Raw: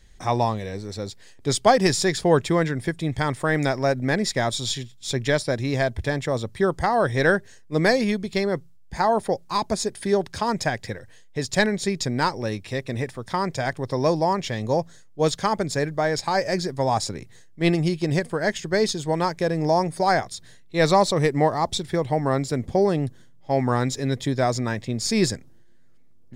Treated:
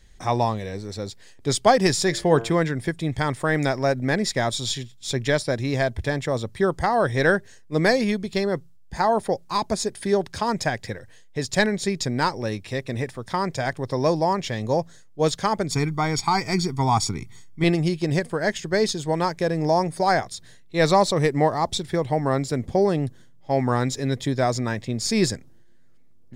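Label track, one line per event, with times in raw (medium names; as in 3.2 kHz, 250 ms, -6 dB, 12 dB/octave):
2.040000	2.540000	de-hum 114.4 Hz, notches 29
8.300000	8.990000	band-stop 2.2 kHz
15.710000	17.640000	comb 0.9 ms, depth 99%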